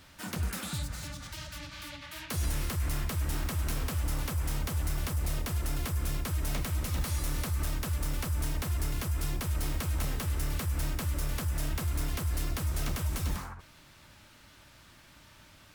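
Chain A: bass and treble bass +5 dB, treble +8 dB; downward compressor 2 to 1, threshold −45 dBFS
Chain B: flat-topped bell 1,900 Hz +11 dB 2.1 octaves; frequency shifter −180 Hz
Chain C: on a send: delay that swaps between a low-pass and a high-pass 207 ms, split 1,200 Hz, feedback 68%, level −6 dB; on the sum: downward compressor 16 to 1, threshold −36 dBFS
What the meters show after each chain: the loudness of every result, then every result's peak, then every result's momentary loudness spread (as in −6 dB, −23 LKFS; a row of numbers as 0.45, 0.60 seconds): −40.0, −30.0, −42.0 LKFS; −22.5, −14.5, −26.0 dBFS; 12, 18, 5 LU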